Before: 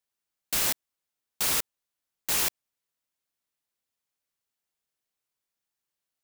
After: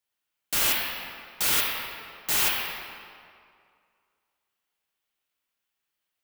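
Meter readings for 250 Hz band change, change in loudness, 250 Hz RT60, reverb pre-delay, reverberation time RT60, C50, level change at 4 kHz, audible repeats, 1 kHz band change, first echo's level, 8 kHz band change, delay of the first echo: +2.0 dB, +1.5 dB, 2.1 s, 3 ms, 2.3 s, −0.5 dB, +5.0 dB, no echo audible, +5.0 dB, no echo audible, +0.5 dB, no echo audible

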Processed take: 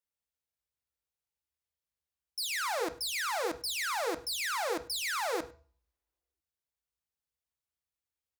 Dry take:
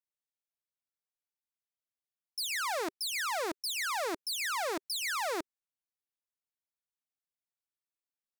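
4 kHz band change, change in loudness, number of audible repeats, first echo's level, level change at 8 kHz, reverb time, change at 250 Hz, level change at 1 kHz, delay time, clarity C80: +0.5 dB, +0.5 dB, 1, −22.5 dB, 0.0 dB, 0.40 s, 0.0 dB, +0.5 dB, 101 ms, 19.0 dB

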